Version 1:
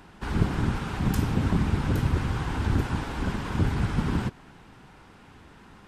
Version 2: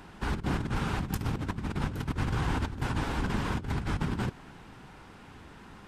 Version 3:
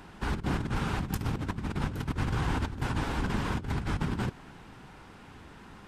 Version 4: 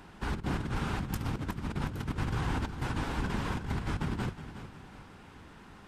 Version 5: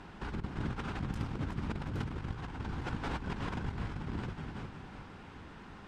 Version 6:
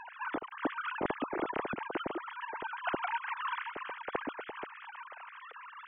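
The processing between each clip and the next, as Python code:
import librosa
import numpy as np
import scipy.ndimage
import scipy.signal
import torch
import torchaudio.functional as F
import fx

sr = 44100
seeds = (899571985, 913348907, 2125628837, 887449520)

y1 = fx.over_compress(x, sr, threshold_db=-28.0, ratio=-0.5)
y1 = y1 * librosa.db_to_amplitude(-2.0)
y2 = y1
y3 = fx.echo_feedback(y2, sr, ms=365, feedback_pct=40, wet_db=-12)
y3 = y3 * librosa.db_to_amplitude(-2.5)
y4 = fx.over_compress(y3, sr, threshold_db=-35.0, ratio=-0.5)
y4 = fx.air_absorb(y4, sr, metres=70.0)
y4 = y4 * librosa.db_to_amplitude(-1.0)
y5 = fx.sine_speech(y4, sr)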